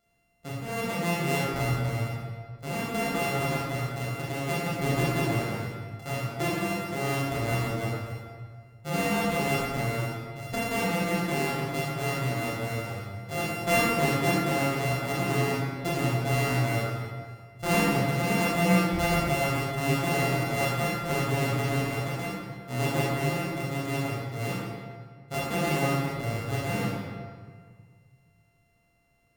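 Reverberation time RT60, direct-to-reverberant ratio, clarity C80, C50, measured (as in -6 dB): 1.8 s, -6.0 dB, 0.5 dB, -1.5 dB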